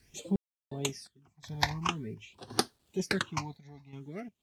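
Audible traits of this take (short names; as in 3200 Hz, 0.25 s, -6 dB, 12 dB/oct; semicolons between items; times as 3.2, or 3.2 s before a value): phasing stages 8, 0.48 Hz, lowest notch 370–2400 Hz; a quantiser's noise floor 12-bit, dither none; random-step tremolo 2.8 Hz, depth 100%; MP3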